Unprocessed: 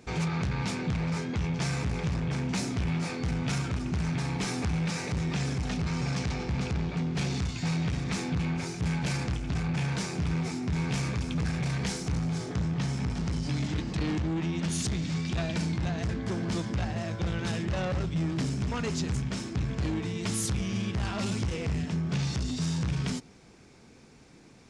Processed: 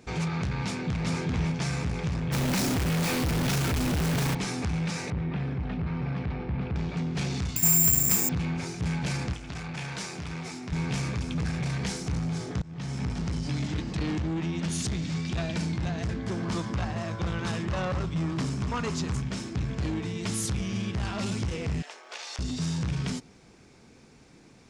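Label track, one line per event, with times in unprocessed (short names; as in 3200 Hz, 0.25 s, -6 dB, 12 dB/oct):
0.650000	1.120000	echo throw 0.39 s, feedback 25%, level -1.5 dB
2.320000	4.350000	companded quantiser 2-bit
5.100000	6.760000	air absorption 450 m
7.560000	8.290000	careless resampling rate divided by 6×, down filtered, up zero stuff
9.330000	10.720000	low shelf 410 Hz -9 dB
12.620000	13.020000	fade in, from -24 dB
16.390000	19.210000	bell 1100 Hz +7 dB 0.59 oct
21.820000	22.390000	inverse Chebyshev high-pass stop band from 160 Hz, stop band 60 dB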